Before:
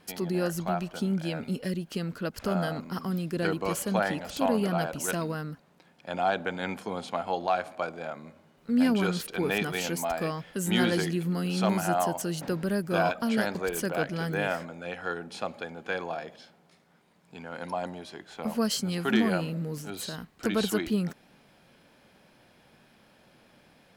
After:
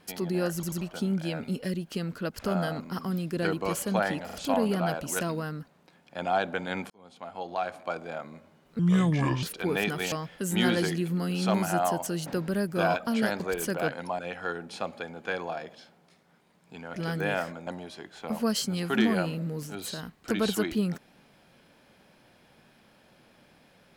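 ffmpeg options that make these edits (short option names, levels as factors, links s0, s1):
-filter_complex "[0:a]asplit=14[s0][s1][s2][s3][s4][s5][s6][s7][s8][s9][s10][s11][s12][s13];[s0]atrim=end=0.632[s14];[s1]atrim=start=0.538:end=0.632[s15];[s2]atrim=start=0.538:end=0.632[s16];[s3]atrim=start=0.808:end=4.292[s17];[s4]atrim=start=4.248:end=4.292[s18];[s5]atrim=start=4.248:end=6.82,asetpts=PTS-STARTPTS,afade=t=out:st=2.568:d=0.004:c=hsin[s19];[s6]atrim=start=6.82:end=8.714,asetpts=PTS-STARTPTS,afade=t=in:d=1.13[s20];[s7]atrim=start=8.71:end=9.17,asetpts=PTS-STARTPTS,asetrate=31752,aresample=44100[s21];[s8]atrim=start=9.166:end=9.862[s22];[s9]atrim=start=10.268:end=14.072[s23];[s10]atrim=start=17.548:end=17.822[s24];[s11]atrim=start=14.798:end=17.552[s25];[s12]atrim=start=14.068:end=14.802[s26];[s13]atrim=start=17.818[s27];[s14][s15]acrossfade=d=0.004:c1=hsin:c2=hsin[s28];[s28][s16]acrossfade=d=0.004:c1=hsin:c2=hsin[s29];[s29][s17]acrossfade=d=0.004:c1=hsin:c2=hsin[s30];[s30][s18]acrossfade=d=0.004:c1=hsin:c2=hsin[s31];[s19][s20]concat=n=2:v=0:a=1[s32];[s31][s32]acrossfade=d=0.004:c1=hsin:c2=hsin[s33];[s33][s21]acrossfade=d=0.004:c1=hsin:c2=hsin[s34];[s34][s22]acrossfade=d=0.004:c1=hsin:c2=hsin[s35];[s35][s23]acrossfade=d=0.004:c1=hsin:c2=hsin[s36];[s36][s24]acrossfade=d=0.004:c1=hsin:c2=hsin[s37];[s37][s25]acrossfade=d=0.004:c1=hsin:c2=hsin[s38];[s38][s26]acrossfade=d=0.004:c1=hsin:c2=hsin[s39];[s39][s27]acrossfade=d=0.004:c1=hsin:c2=hsin"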